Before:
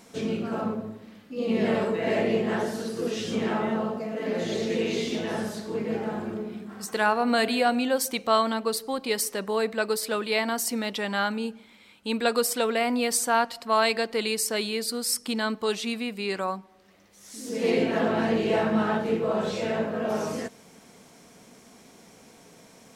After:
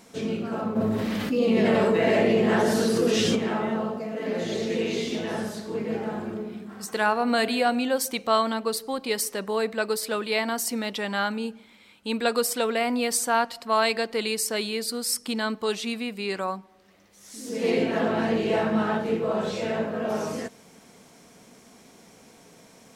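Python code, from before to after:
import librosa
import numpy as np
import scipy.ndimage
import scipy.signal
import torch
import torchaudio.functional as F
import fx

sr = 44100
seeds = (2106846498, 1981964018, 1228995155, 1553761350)

y = fx.env_flatten(x, sr, amount_pct=70, at=(0.75, 3.35), fade=0.02)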